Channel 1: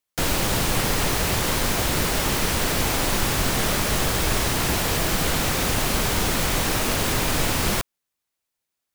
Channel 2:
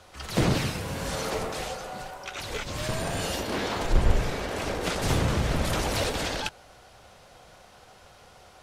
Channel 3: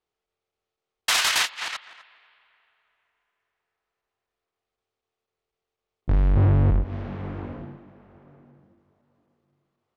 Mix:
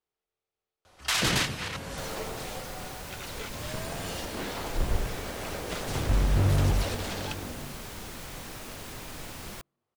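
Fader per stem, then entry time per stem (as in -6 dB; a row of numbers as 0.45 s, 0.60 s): -18.5 dB, -6.5 dB, -5.5 dB; 1.80 s, 0.85 s, 0.00 s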